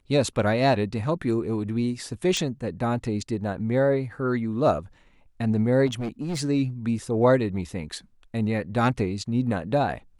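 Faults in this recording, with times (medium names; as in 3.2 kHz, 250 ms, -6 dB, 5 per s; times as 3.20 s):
2.37 s: pop
5.86–6.41 s: clipped -25 dBFS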